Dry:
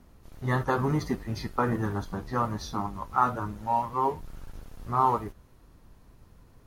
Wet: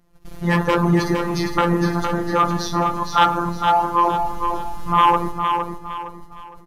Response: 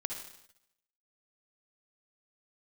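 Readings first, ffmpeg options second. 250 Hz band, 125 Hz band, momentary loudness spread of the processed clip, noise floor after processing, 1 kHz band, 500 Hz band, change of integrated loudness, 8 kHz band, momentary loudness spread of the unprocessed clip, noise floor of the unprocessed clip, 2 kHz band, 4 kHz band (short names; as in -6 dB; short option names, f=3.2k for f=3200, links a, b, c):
+10.5 dB, +7.5 dB, 11 LU, -43 dBFS, +10.5 dB, +9.5 dB, +9.5 dB, +12.0 dB, 15 LU, -57 dBFS, +11.5 dB, +17.0 dB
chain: -filter_complex "[0:a]aresample=32000,aresample=44100,agate=range=-17dB:threshold=-51dB:ratio=16:detection=peak,asplit=2[a][b];[1:a]atrim=start_sample=2205[c];[b][c]afir=irnorm=-1:irlink=0,volume=-10.5dB[d];[a][d]amix=inputs=2:normalize=0,afftfilt=real='hypot(re,im)*cos(PI*b)':imag='0':win_size=1024:overlap=0.75,aeval=exprs='0.316*sin(PI/2*2.24*val(0)/0.316)':c=same,aecho=1:1:461|922|1383|1844:0.501|0.17|0.0579|0.0197,volume=2.5dB"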